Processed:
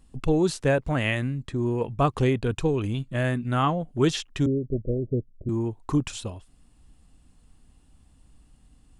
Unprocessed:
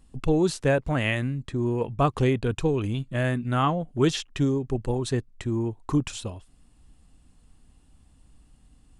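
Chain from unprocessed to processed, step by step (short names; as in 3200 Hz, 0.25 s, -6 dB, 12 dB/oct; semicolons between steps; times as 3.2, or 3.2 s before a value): 4.46–5.49 steep low-pass 630 Hz 96 dB/oct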